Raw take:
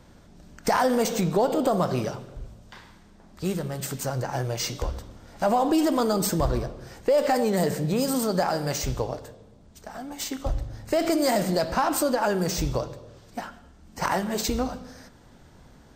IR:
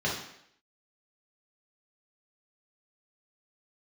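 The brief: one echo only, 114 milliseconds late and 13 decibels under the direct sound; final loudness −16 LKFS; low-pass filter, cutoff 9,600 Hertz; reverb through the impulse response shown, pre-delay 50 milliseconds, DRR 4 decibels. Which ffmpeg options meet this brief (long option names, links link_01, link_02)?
-filter_complex "[0:a]lowpass=9600,aecho=1:1:114:0.224,asplit=2[link_01][link_02];[1:a]atrim=start_sample=2205,adelay=50[link_03];[link_02][link_03]afir=irnorm=-1:irlink=0,volume=-14dB[link_04];[link_01][link_04]amix=inputs=2:normalize=0,volume=8dB"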